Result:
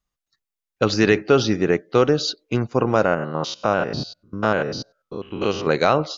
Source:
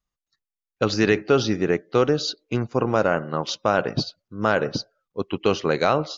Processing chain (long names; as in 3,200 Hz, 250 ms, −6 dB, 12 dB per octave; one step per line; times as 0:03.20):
0:03.05–0:05.67: spectrum averaged block by block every 100 ms
level +2.5 dB